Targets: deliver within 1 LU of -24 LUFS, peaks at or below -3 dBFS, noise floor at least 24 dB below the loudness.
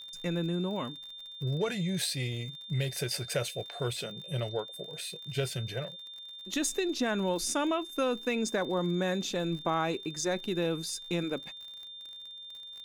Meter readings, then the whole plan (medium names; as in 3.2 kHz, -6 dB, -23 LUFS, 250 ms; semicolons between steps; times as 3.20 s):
tick rate 53 per s; steady tone 3.6 kHz; tone level -43 dBFS; loudness -33.0 LUFS; peak level -18.0 dBFS; loudness target -24.0 LUFS
-> de-click; band-stop 3.6 kHz, Q 30; trim +9 dB